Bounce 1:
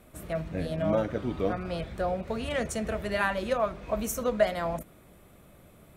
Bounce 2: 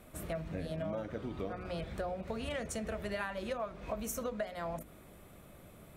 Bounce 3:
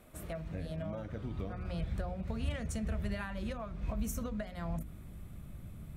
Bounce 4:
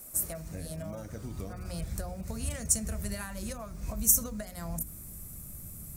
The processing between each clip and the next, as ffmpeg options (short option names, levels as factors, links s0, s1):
-af "acompressor=threshold=0.0178:ratio=6,bandreject=f=60.65:t=h:w=4,bandreject=f=121.3:t=h:w=4,bandreject=f=181.95:t=h:w=4,bandreject=f=242.6:t=h:w=4,bandreject=f=303.25:t=h:w=4,bandreject=f=363.9:t=h:w=4,bandreject=f=424.55:t=h:w=4,bandreject=f=485.2:t=h:w=4"
-af "asubboost=boost=7.5:cutoff=180,volume=0.708"
-af "aexciter=amount=10.2:drive=5.7:freq=5000"